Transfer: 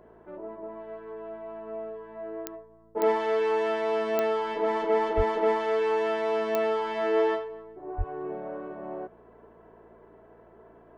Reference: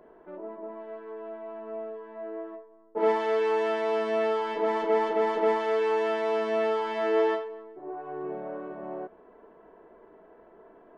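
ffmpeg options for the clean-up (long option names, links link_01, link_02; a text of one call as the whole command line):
ffmpeg -i in.wav -filter_complex "[0:a]adeclick=threshold=4,bandreject=frequency=56.7:width_type=h:width=4,bandreject=frequency=113.4:width_type=h:width=4,bandreject=frequency=170.1:width_type=h:width=4,bandreject=frequency=226.8:width_type=h:width=4,asplit=3[link_01][link_02][link_03];[link_01]afade=type=out:start_time=5.16:duration=0.02[link_04];[link_02]highpass=frequency=140:width=0.5412,highpass=frequency=140:width=1.3066,afade=type=in:start_time=5.16:duration=0.02,afade=type=out:start_time=5.28:duration=0.02[link_05];[link_03]afade=type=in:start_time=5.28:duration=0.02[link_06];[link_04][link_05][link_06]amix=inputs=3:normalize=0,asplit=3[link_07][link_08][link_09];[link_07]afade=type=out:start_time=7.97:duration=0.02[link_10];[link_08]highpass=frequency=140:width=0.5412,highpass=frequency=140:width=1.3066,afade=type=in:start_time=7.97:duration=0.02,afade=type=out:start_time=8.09:duration=0.02[link_11];[link_09]afade=type=in:start_time=8.09:duration=0.02[link_12];[link_10][link_11][link_12]amix=inputs=3:normalize=0" out.wav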